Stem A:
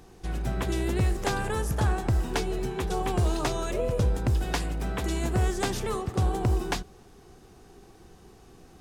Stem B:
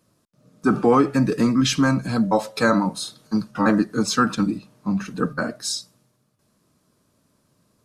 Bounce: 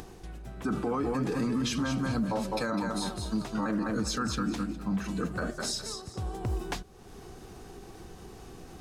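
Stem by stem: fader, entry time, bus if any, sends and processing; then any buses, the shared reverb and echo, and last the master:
-5.5 dB, 0.00 s, no send, no echo send, upward compressor, threshold -29 dBFS; auto duck -8 dB, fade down 0.40 s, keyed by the second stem
-6.0 dB, 0.00 s, no send, echo send -7 dB, none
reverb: none
echo: feedback delay 204 ms, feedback 24%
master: peak limiter -22 dBFS, peak gain reduction 12 dB

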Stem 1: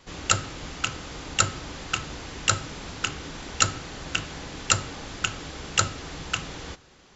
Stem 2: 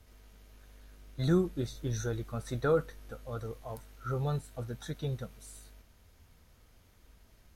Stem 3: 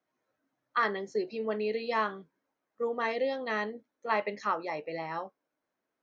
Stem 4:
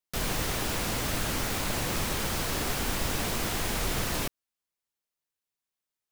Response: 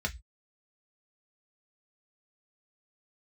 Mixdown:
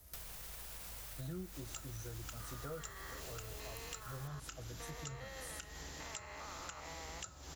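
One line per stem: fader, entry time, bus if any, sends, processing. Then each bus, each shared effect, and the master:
-10.0 dB, 1.45 s, bus B, send -21 dB, none
-6.0 dB, 0.00 s, bus B, send -8.5 dB, none
+1.5 dB, 2.00 s, bus A, no send, spectrogram pixelated in time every 400 ms; high-pass 1 kHz 6 dB/octave
-4.5 dB, 0.00 s, bus A, no send, peak limiter -25 dBFS, peak gain reduction 8 dB; auto duck -10 dB, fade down 0.25 s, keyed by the second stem
bus A: 0.0 dB, peaking EQ 280 Hz -14 dB 0.85 oct; peak limiter -36 dBFS, peak gain reduction 6.5 dB
bus B: 0.0 dB, treble shelf 5.9 kHz +10.5 dB; compression, threshold -40 dBFS, peak gain reduction 18.5 dB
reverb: on, RT60 0.10 s, pre-delay 3 ms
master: treble shelf 7.9 kHz +11.5 dB; word length cut 12-bit, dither triangular; compression 2.5:1, threshold -47 dBFS, peak gain reduction 13 dB

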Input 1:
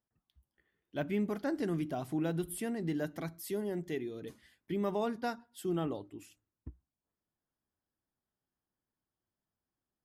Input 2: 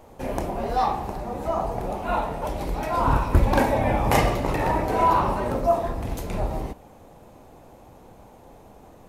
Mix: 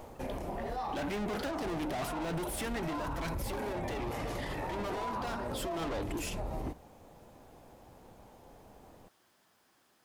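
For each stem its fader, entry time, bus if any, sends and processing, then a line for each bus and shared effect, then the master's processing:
-2.5 dB, 0.00 s, no send, overdrive pedal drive 36 dB, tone 5.1 kHz, clips at -22 dBFS
+2.5 dB, 0.00 s, no send, auto duck -10 dB, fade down 0.25 s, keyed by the first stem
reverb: none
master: peak limiter -29 dBFS, peak gain reduction 16 dB

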